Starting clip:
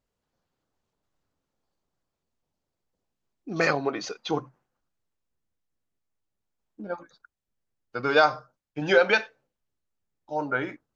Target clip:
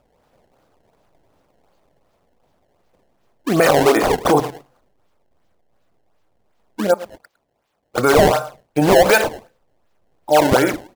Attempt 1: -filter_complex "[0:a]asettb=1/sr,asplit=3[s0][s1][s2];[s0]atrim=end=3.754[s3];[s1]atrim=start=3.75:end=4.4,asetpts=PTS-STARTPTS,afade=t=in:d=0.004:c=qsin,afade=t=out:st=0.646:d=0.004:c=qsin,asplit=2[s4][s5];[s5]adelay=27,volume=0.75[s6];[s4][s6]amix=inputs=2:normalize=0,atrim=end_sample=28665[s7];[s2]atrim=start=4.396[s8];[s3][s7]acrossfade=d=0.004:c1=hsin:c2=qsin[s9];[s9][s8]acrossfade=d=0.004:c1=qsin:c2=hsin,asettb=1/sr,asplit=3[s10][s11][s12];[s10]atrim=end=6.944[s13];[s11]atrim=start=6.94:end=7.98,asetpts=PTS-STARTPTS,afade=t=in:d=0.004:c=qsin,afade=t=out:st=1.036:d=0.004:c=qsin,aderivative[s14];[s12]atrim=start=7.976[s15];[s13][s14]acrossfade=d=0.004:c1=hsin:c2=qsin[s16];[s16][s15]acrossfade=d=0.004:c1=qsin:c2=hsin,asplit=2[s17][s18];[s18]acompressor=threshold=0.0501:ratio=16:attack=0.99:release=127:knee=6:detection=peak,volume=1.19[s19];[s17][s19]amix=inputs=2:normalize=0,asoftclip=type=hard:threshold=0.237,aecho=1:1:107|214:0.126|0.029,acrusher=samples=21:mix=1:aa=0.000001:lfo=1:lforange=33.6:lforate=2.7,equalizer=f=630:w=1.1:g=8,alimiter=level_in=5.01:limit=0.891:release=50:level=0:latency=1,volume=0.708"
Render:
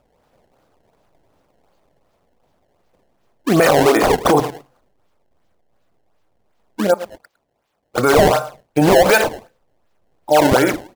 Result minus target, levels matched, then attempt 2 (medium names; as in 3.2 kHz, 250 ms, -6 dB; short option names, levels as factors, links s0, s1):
compression: peak gain reduction -11 dB
-filter_complex "[0:a]asettb=1/sr,asplit=3[s0][s1][s2];[s0]atrim=end=3.754[s3];[s1]atrim=start=3.75:end=4.4,asetpts=PTS-STARTPTS,afade=t=in:d=0.004:c=qsin,afade=t=out:st=0.646:d=0.004:c=qsin,asplit=2[s4][s5];[s5]adelay=27,volume=0.75[s6];[s4][s6]amix=inputs=2:normalize=0,atrim=end_sample=28665[s7];[s2]atrim=start=4.396[s8];[s3][s7]acrossfade=d=0.004:c1=hsin:c2=qsin[s9];[s9][s8]acrossfade=d=0.004:c1=qsin:c2=hsin,asettb=1/sr,asplit=3[s10][s11][s12];[s10]atrim=end=6.944[s13];[s11]atrim=start=6.94:end=7.98,asetpts=PTS-STARTPTS,afade=t=in:d=0.004:c=qsin,afade=t=out:st=1.036:d=0.004:c=qsin,aderivative[s14];[s12]atrim=start=7.976[s15];[s13][s14]acrossfade=d=0.004:c1=hsin:c2=qsin[s16];[s16][s15]acrossfade=d=0.004:c1=qsin:c2=hsin,asplit=2[s17][s18];[s18]acompressor=threshold=0.0126:ratio=16:attack=0.99:release=127:knee=6:detection=peak,volume=1.19[s19];[s17][s19]amix=inputs=2:normalize=0,asoftclip=type=hard:threshold=0.237,aecho=1:1:107|214:0.126|0.029,acrusher=samples=21:mix=1:aa=0.000001:lfo=1:lforange=33.6:lforate=2.7,equalizer=f=630:w=1.1:g=8,alimiter=level_in=5.01:limit=0.891:release=50:level=0:latency=1,volume=0.708"